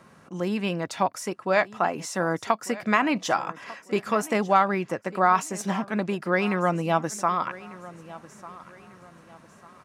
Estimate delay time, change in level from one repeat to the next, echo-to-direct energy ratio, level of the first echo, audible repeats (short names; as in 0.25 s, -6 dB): 1.197 s, -9.0 dB, -18.0 dB, -18.5 dB, 2